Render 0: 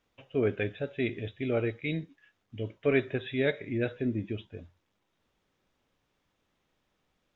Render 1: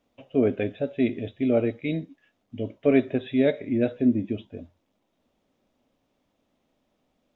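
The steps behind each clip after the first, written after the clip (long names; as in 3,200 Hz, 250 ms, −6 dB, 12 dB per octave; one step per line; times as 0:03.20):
graphic EQ with 15 bands 250 Hz +11 dB, 630 Hz +9 dB, 1,600 Hz −4 dB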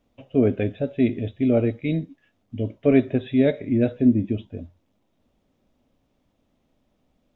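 low-shelf EQ 170 Hz +11.5 dB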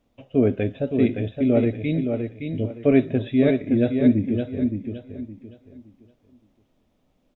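repeating echo 567 ms, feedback 28%, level −6 dB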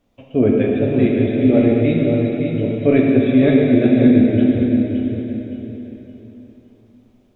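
dense smooth reverb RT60 3.6 s, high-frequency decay 0.95×, DRR −2.5 dB
level +2.5 dB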